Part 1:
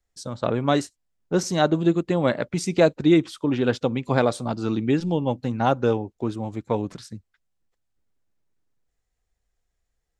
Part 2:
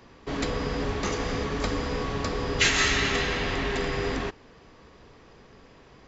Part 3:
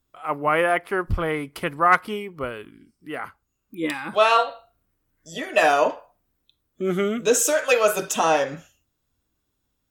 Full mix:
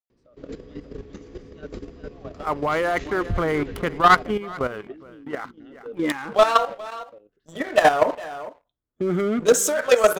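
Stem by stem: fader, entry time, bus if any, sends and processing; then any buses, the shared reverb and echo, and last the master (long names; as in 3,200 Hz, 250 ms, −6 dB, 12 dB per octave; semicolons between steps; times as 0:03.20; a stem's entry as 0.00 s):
−8.0 dB, 0.00 s, no send, echo send −4 dB, formant filter swept between two vowels a-i 0.47 Hz
−15.5 dB, 0.10 s, no send, echo send −18 dB, low shelf with overshoot 580 Hz +9.5 dB, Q 1.5
0.0 dB, 2.20 s, no send, echo send −19 dB, adaptive Wiener filter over 9 samples; parametric band 2,600 Hz −10 dB 0.2 octaves; leveller curve on the samples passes 2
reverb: not used
echo: single-tap delay 417 ms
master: output level in coarse steps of 11 dB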